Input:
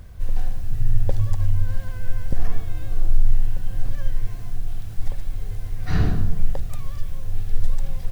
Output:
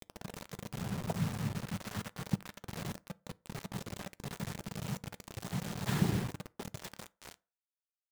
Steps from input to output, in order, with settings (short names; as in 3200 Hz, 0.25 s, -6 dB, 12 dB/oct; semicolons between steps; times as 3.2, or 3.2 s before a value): tape stop at the end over 1.91 s; compressor 6:1, threshold -22 dBFS, peak gain reduction 14 dB; noise vocoder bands 6; bit-crush 7-bit; reverb RT60 0.35 s, pre-delay 5 ms, DRR 17.5 dB; gain +1.5 dB